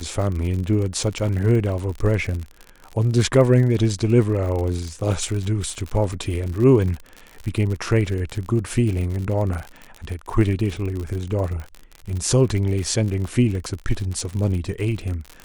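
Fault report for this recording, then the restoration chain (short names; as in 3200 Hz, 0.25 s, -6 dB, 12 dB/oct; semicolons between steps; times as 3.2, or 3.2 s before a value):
crackle 58/s -27 dBFS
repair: de-click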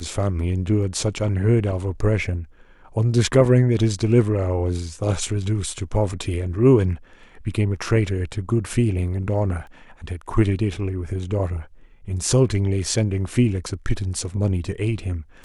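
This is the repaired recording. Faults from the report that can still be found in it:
none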